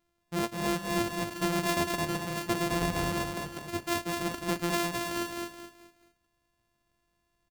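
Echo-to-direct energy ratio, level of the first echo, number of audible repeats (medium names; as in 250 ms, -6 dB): -3.5 dB, -4.0 dB, 4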